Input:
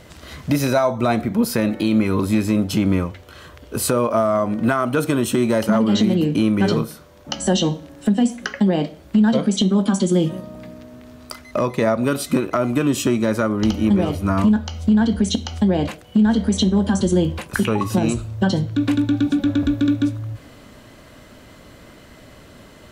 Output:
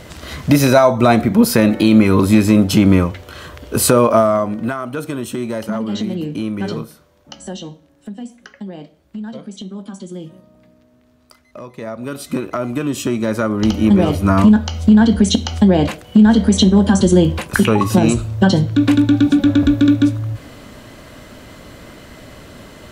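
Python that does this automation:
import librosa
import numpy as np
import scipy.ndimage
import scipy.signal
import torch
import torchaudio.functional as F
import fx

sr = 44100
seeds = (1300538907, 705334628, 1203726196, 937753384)

y = fx.gain(x, sr, db=fx.line((4.13, 7.0), (4.79, -5.0), (6.81, -5.0), (7.8, -13.5), (11.65, -13.5), (12.4, -2.0), (12.91, -2.0), (14.1, 6.0)))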